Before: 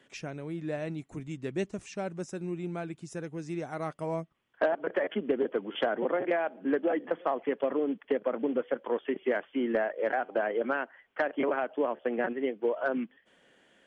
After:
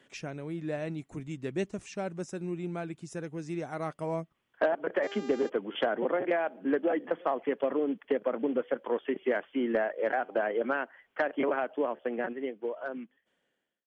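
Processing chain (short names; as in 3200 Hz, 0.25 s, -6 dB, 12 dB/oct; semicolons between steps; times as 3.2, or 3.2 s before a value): ending faded out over 2.29 s; 5.02–5.48 buzz 400 Hz, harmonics 19, -44 dBFS -6 dB/oct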